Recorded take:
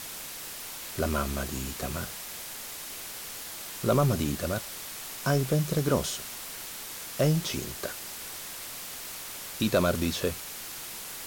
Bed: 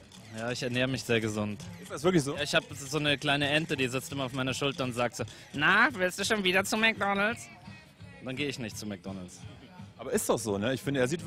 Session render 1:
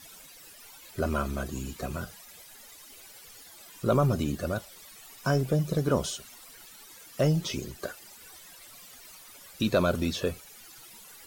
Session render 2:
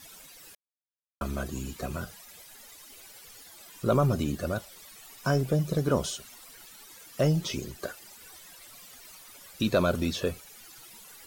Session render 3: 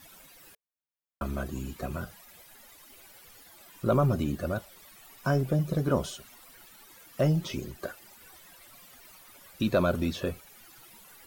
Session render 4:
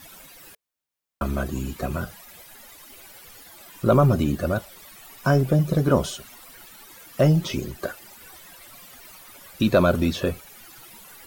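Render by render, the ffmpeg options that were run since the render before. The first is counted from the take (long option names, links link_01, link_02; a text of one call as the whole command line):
ffmpeg -i in.wav -af "afftdn=noise_reduction=15:noise_floor=-40" out.wav
ffmpeg -i in.wav -filter_complex "[0:a]asplit=3[link_01][link_02][link_03];[link_01]atrim=end=0.55,asetpts=PTS-STARTPTS,afade=type=out:start_time=0.546:duration=0.004:curve=hsin[link_04];[link_02]atrim=start=0.55:end=1.21,asetpts=PTS-STARTPTS,volume=0[link_05];[link_03]atrim=start=1.21,asetpts=PTS-STARTPTS,afade=type=in:duration=0.004:curve=hsin[link_06];[link_04][link_05][link_06]concat=n=3:v=0:a=1" out.wav
ffmpeg -i in.wav -af "equalizer=frequency=6400:width=0.56:gain=-7,bandreject=frequency=450:width=13" out.wav
ffmpeg -i in.wav -af "volume=7dB" out.wav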